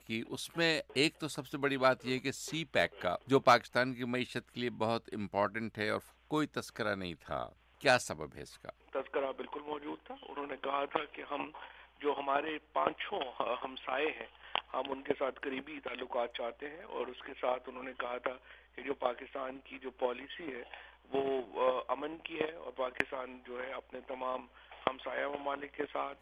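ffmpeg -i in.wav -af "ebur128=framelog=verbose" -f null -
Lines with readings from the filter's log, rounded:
Integrated loudness:
  I:         -36.1 LUFS
  Threshold: -46.4 LUFS
Loudness range:
  LRA:         7.9 LU
  Threshold: -56.5 LUFS
  LRA low:   -40.1 LUFS
  LRA high:  -32.1 LUFS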